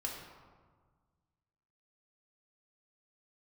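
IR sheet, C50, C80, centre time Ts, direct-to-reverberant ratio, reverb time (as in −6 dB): 3.0 dB, 4.5 dB, 59 ms, −2.0 dB, 1.6 s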